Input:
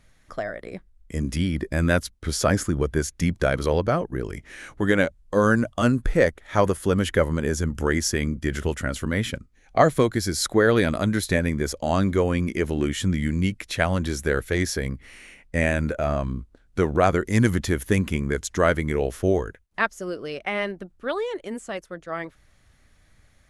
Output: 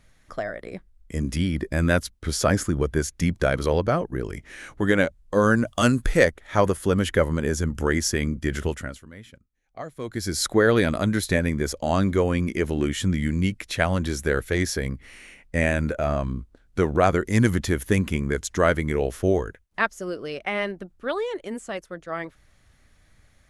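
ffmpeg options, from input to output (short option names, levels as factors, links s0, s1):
-filter_complex "[0:a]asplit=3[s0][s1][s2];[s0]afade=t=out:st=5.66:d=0.02[s3];[s1]highshelf=f=2100:g=9.5,afade=t=in:st=5.66:d=0.02,afade=t=out:st=6.24:d=0.02[s4];[s2]afade=t=in:st=6.24:d=0.02[s5];[s3][s4][s5]amix=inputs=3:normalize=0,asplit=3[s6][s7][s8];[s6]atrim=end=9.03,asetpts=PTS-STARTPTS,afade=t=out:st=8.64:d=0.39:silence=0.112202[s9];[s7]atrim=start=9.03:end=9.98,asetpts=PTS-STARTPTS,volume=0.112[s10];[s8]atrim=start=9.98,asetpts=PTS-STARTPTS,afade=t=in:d=0.39:silence=0.112202[s11];[s9][s10][s11]concat=n=3:v=0:a=1"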